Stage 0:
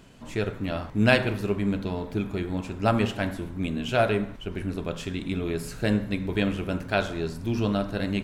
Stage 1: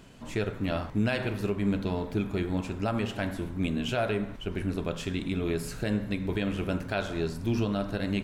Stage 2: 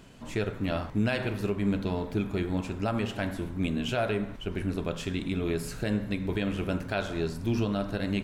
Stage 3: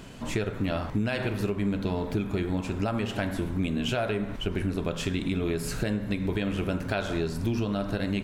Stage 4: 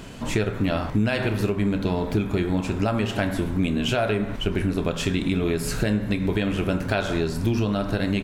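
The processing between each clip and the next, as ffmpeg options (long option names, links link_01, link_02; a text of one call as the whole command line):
ffmpeg -i in.wav -af "alimiter=limit=-18dB:level=0:latency=1:release=201" out.wav
ffmpeg -i in.wav -af anull out.wav
ffmpeg -i in.wav -af "acompressor=threshold=-33dB:ratio=4,volume=7.5dB" out.wav
ffmpeg -i in.wav -filter_complex "[0:a]asplit=2[link_01][link_02];[link_02]adelay=28,volume=-14dB[link_03];[link_01][link_03]amix=inputs=2:normalize=0,volume=5dB" out.wav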